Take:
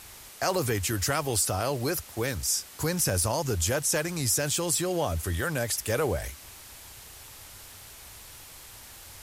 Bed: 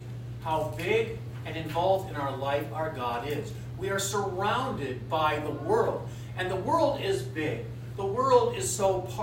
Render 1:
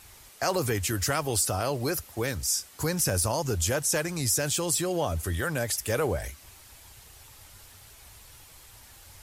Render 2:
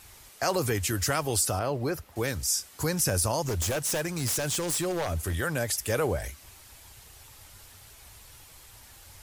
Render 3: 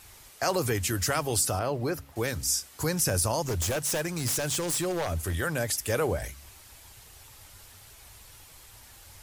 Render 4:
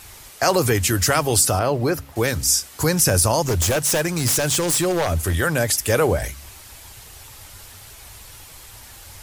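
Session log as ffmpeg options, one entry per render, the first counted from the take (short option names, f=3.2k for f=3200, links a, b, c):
-af "afftdn=nr=6:nf=-48"
-filter_complex "[0:a]asettb=1/sr,asplit=3[a][b][c];[a]atrim=end=1.594[d];[b]atrim=start=1.59:end=2.16,asetpts=PTS-STARTPTS,afade=t=in:d=0.004:c=qsin,afade=t=out:st=0.566:d=0.004:c=qsin,equalizer=f=9.9k:t=o:w=2.5:g=-12.5[e];[c]atrim=start=2.156[f];[d][e]acrossfade=d=0.004:c1=hsin:c2=qsin[g];[g][f]acrossfade=d=0.004:c1=qsin:c2=hsin,asettb=1/sr,asplit=3[h][i][j];[h]atrim=end=3.464[k];[i]atrim=start=3.46:end=5.35,asetpts=PTS-STARTPTS,afade=t=in:d=0.004:c=qsin,afade=t=out:st=1.886:d=0.004:c=qsin,aeval=exprs='0.0708*(abs(mod(val(0)/0.0708+3,4)-2)-1)':c=same[l];[j]atrim=start=5.346[m];[k][l]acrossfade=d=0.004:c1=hsin:c2=qsin[n];[n][m]acrossfade=d=0.004:c1=qsin:c2=hsin"
-af "bandreject=f=68.81:t=h:w=4,bandreject=f=137.62:t=h:w=4,bandreject=f=206.43:t=h:w=4,bandreject=f=275.24:t=h:w=4"
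-af "volume=9dB"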